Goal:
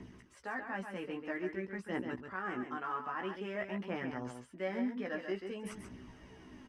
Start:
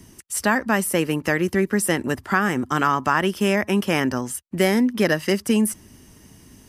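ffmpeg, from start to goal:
ffmpeg -i in.wav -filter_complex "[0:a]lowpass=2300,lowshelf=frequency=200:gain=-10,areverse,acompressor=threshold=-39dB:ratio=4,areverse,aphaser=in_gain=1:out_gain=1:delay=4.8:decay=0.46:speed=0.51:type=triangular,asplit=2[link_01][link_02];[link_02]adelay=16,volume=-4.5dB[link_03];[link_01][link_03]amix=inputs=2:normalize=0,asplit=2[link_04][link_05];[link_05]aecho=0:1:136:0.447[link_06];[link_04][link_06]amix=inputs=2:normalize=0,volume=-3dB" out.wav

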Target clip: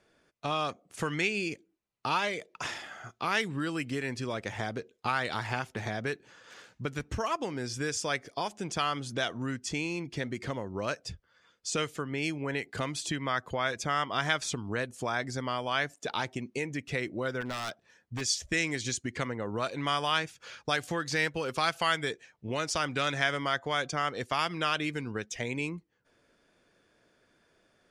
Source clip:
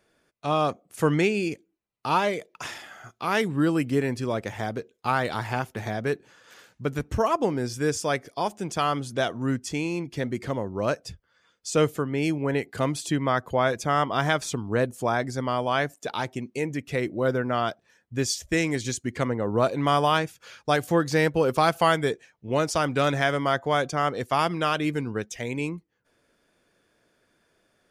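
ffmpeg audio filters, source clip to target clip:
ffmpeg -i in.wav -filter_complex "[0:a]lowpass=8100,acrossover=split=1400[link_01][link_02];[link_01]acompressor=threshold=-32dB:ratio=6[link_03];[link_03][link_02]amix=inputs=2:normalize=0,asplit=3[link_04][link_05][link_06];[link_04]afade=type=out:start_time=17.4:duration=0.02[link_07];[link_05]aeval=exprs='0.0355*(abs(mod(val(0)/0.0355+3,4)-2)-1)':channel_layout=same,afade=type=in:start_time=17.4:duration=0.02,afade=type=out:start_time=18.2:duration=0.02[link_08];[link_06]afade=type=in:start_time=18.2:duration=0.02[link_09];[link_07][link_08][link_09]amix=inputs=3:normalize=0" out.wav

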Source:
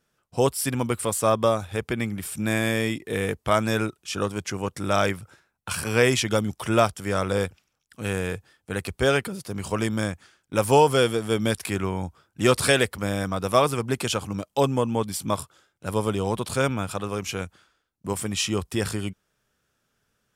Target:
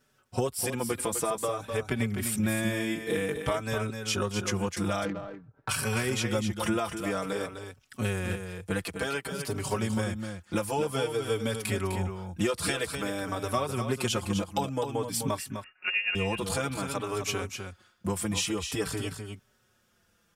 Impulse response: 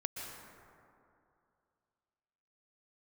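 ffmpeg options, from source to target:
-filter_complex "[0:a]asettb=1/sr,asplit=3[link_01][link_02][link_03];[link_01]atrim=end=15.384[link_04];[link_02]atrim=start=15.38:end=16.15,asetpts=PTS-STARTPTS,afade=type=in:duration=0.004:curve=qsin,afade=type=out:start_time=0.766:duration=0.004:curve=qsin,lowpass=frequency=2500:width_type=q:width=0.5098,lowpass=frequency=2500:width_type=q:width=0.6013,lowpass=frequency=2500:width_type=q:width=0.9,lowpass=frequency=2500:width_type=q:width=2.563,afreqshift=-2900[link_05];[link_03]atrim=start=16.146[link_06];[link_04][link_05]acrossfade=duration=0.004:curve1=hsin:curve2=qsin[link_07];[link_07][link_06]acrossfade=duration=0.004:curve1=qsin:curve2=hsin,acompressor=threshold=-30dB:ratio=8,asettb=1/sr,asplit=3[link_08][link_09][link_10];[link_08]atrim=end=8.814[link_11];[link_09]atrim=start=8.81:end=9.32,asetpts=PTS-STARTPTS,afade=type=in:duration=0.004:curve=qsin,afade=type=out:start_time=0.506:duration=0.004:curve=qsin,highpass=frequency=350:poles=1[link_12];[link_10]atrim=start=9.316[link_13];[link_11][link_12]acrossfade=duration=0.004:curve1=hsin:curve2=qsin[link_14];[link_14][link_13]acrossfade=duration=0.004:curve1=qsin:curve2=hsin,aecho=1:1:254:0.422,asettb=1/sr,asplit=3[link_15][link_16][link_17];[link_15]atrim=end=5.054[link_18];[link_16]atrim=start=5.05:end=5.69,asetpts=PTS-STARTPTS,afade=type=in:duration=0.004:curve=qsin,afade=type=out:start_time=0.636:duration=0.004:curve=qsin,adynamicsmooth=sensitivity=2.5:basefreq=740[link_19];[link_17]atrim=start=5.686[link_20];[link_18][link_19]acrossfade=duration=0.004:curve1=hsin:curve2=qsin[link_21];[link_21][link_20]acrossfade=duration=0.004:curve1=qsin:curve2=hsin,asplit=2[link_22][link_23];[link_23]adelay=4.8,afreqshift=-0.52[link_24];[link_22][link_24]amix=inputs=2:normalize=1,volume=7dB"

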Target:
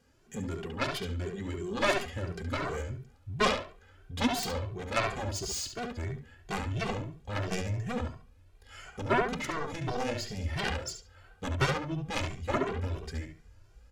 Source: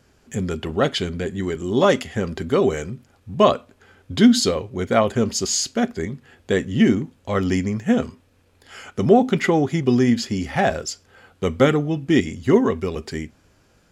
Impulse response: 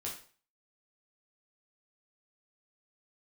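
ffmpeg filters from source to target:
-filter_complex "[0:a]asubboost=boost=11.5:cutoff=61,aeval=exprs='0.708*(cos(1*acos(clip(val(0)/0.708,-1,1)))-cos(1*PI/2))+0.224*(cos(7*acos(clip(val(0)/0.708,-1,1)))-cos(7*PI/2))':channel_layout=same,asplit=2[link_01][link_02];[link_02]adelay=70,lowpass=frequency=4300:poles=1,volume=-4.5dB,asplit=2[link_03][link_04];[link_04]adelay=70,lowpass=frequency=4300:poles=1,volume=0.29,asplit=2[link_05][link_06];[link_06]adelay=70,lowpass=frequency=4300:poles=1,volume=0.29,asplit=2[link_07][link_08];[link_08]adelay=70,lowpass=frequency=4300:poles=1,volume=0.29[link_09];[link_03][link_05][link_07][link_09]amix=inputs=4:normalize=0[link_10];[link_01][link_10]amix=inputs=2:normalize=0,asplit=2[link_11][link_12];[link_12]adelay=2.1,afreqshift=2.9[link_13];[link_11][link_13]amix=inputs=2:normalize=1,volume=-8dB"

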